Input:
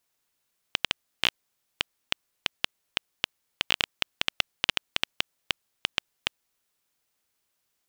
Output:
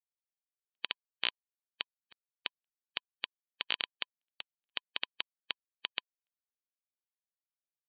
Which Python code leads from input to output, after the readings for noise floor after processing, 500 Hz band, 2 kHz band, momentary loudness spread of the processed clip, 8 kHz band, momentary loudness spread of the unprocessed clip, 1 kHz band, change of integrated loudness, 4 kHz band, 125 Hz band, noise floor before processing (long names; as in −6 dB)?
below −85 dBFS, −11.5 dB, −9.5 dB, 8 LU, below −35 dB, 8 LU, −10.5 dB, −8.5 dB, −9.0 dB, below −20 dB, −78 dBFS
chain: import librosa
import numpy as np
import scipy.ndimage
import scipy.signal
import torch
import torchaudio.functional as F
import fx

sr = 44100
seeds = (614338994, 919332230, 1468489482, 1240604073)

y = fx.bin_expand(x, sr, power=1.5)
y = fx.highpass(y, sr, hz=430.0, slope=6)
y = fx.notch(y, sr, hz=1000.0, q=16.0)
y = fx.step_gate(y, sr, bpm=92, pattern='x..x.xxx.xxx', floor_db=-60.0, edge_ms=4.5)
y = fx.brickwall_lowpass(y, sr, high_hz=4500.0)
y = y * 10.0 ** (-5.0 / 20.0)